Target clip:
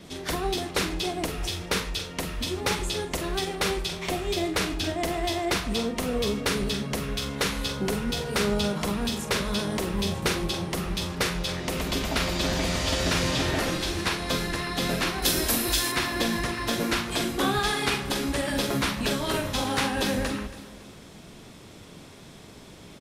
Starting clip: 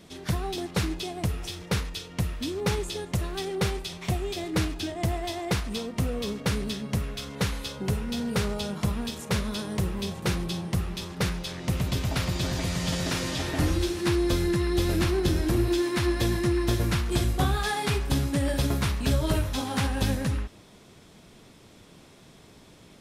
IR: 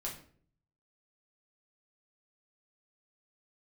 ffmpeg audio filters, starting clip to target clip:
-filter_complex "[0:a]asettb=1/sr,asplit=3[s0][s1][s2];[s0]atrim=end=15.224[s3];[s1]atrim=start=15.22:end=15.92,asetpts=PTS-STARTPTS,afade=t=in:d=0.004:c=qsin,afade=t=out:st=0.696:d=0.004:c=qsin,aemphasis=mode=production:type=75fm[s4];[s2]atrim=start=15.916[s5];[s3][s4]acrossfade=d=0.004:c1=hsin:c2=qsin[s6];[s6][s5]acrossfade=d=0.004:c1=qsin:c2=hsin,afftfilt=real='re*lt(hypot(re,im),0.282)':imag='im*lt(hypot(re,im),0.282)':win_size=1024:overlap=0.75,acrossover=split=690|920[s7][s8][s9];[s8]alimiter=level_in=6.31:limit=0.0631:level=0:latency=1:release=187,volume=0.158[s10];[s7][s10][s9]amix=inputs=3:normalize=0,asplit=2[s11][s12];[s12]adelay=44,volume=0.335[s13];[s11][s13]amix=inputs=2:normalize=0,asplit=2[s14][s15];[s15]aecho=0:1:278|556|834:0.141|0.0579|0.0237[s16];[s14][s16]amix=inputs=2:normalize=0,adynamicequalizer=threshold=0.00562:dfrequency=6000:dqfactor=0.7:tfrequency=6000:tqfactor=0.7:attack=5:release=100:ratio=0.375:range=2:mode=cutabove:tftype=highshelf,volume=1.78"

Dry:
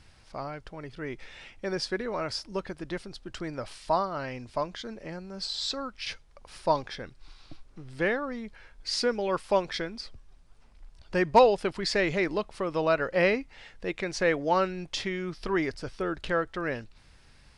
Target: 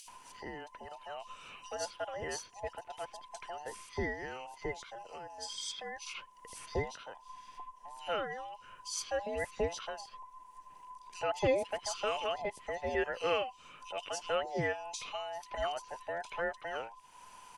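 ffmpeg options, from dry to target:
-filter_complex "[0:a]afftfilt=real='real(if(between(b,1,1008),(2*floor((b-1)/48)+1)*48-b,b),0)':imag='imag(if(between(b,1,1008),(2*floor((b-1)/48)+1)*48-b,b),0)*if(between(b,1,1008),-1,1)':win_size=2048:overlap=0.75,acrossover=split=380|2800[s0][s1][s2];[s0]alimiter=limit=0.0944:level=0:latency=1:release=425[s3];[s3][s1][s2]amix=inputs=3:normalize=0,acrossover=split=3400[s4][s5];[s4]adelay=80[s6];[s6][s5]amix=inputs=2:normalize=0,acompressor=mode=upward:threshold=0.0158:ratio=2.5,aexciter=amount=1.4:drive=4.7:freq=2300,volume=0.398"

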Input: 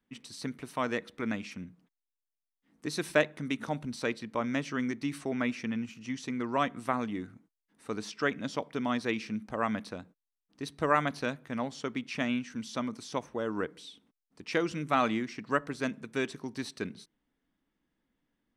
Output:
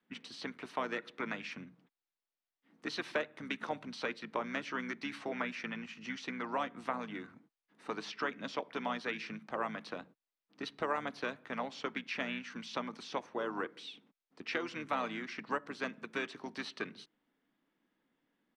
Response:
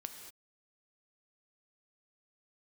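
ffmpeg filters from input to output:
-filter_complex "[0:a]acrossover=split=600|5700[s0][s1][s2];[s0]acompressor=threshold=0.00631:ratio=4[s3];[s1]acompressor=threshold=0.0126:ratio=4[s4];[s2]acompressor=threshold=0.00158:ratio=4[s5];[s3][s4][s5]amix=inputs=3:normalize=0,acrossover=split=200 5000:gain=0.126 1 0.141[s6][s7][s8];[s6][s7][s8]amix=inputs=3:normalize=0,asplit=2[s9][s10];[s10]asetrate=33038,aresample=44100,atempo=1.33484,volume=0.355[s11];[s9][s11]amix=inputs=2:normalize=0,volume=1.33"

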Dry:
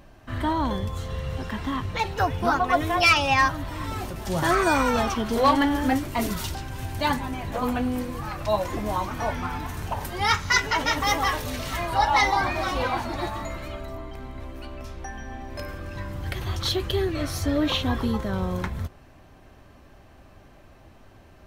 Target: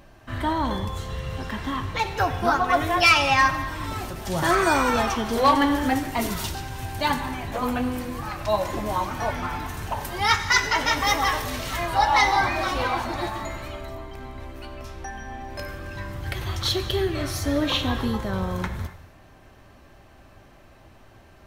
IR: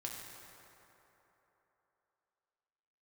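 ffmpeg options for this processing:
-filter_complex "[0:a]asplit=2[s0][s1];[1:a]atrim=start_sample=2205,afade=t=out:st=0.34:d=0.01,atrim=end_sample=15435,lowshelf=f=480:g=-9[s2];[s1][s2]afir=irnorm=-1:irlink=0,volume=1.06[s3];[s0][s3]amix=inputs=2:normalize=0,volume=0.75"

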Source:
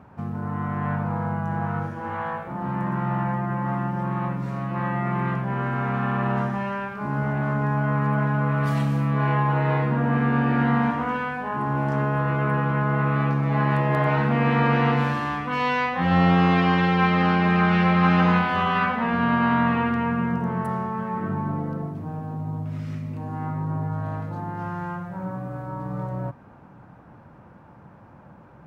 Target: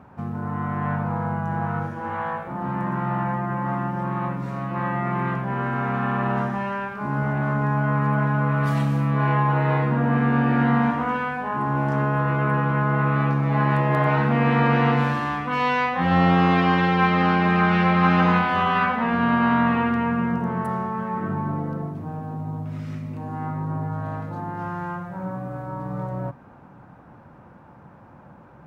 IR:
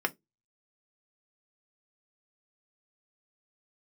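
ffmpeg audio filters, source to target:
-filter_complex "[0:a]asplit=2[s0][s1];[1:a]atrim=start_sample=2205,asetrate=32193,aresample=44100[s2];[s1][s2]afir=irnorm=-1:irlink=0,volume=0.0631[s3];[s0][s3]amix=inputs=2:normalize=0"

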